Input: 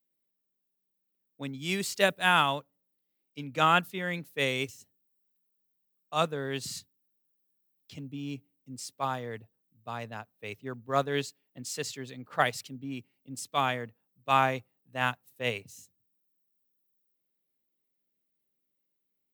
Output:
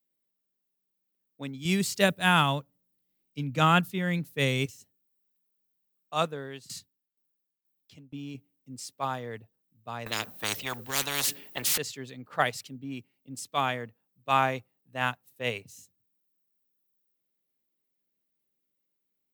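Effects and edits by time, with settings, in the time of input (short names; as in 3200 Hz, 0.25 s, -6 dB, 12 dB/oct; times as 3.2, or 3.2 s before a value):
1.65–4.66 tone controls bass +11 dB, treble +3 dB
6.22–8.35 tremolo saw down 2.1 Hz, depth 90%
10.06–11.78 spectral compressor 10:1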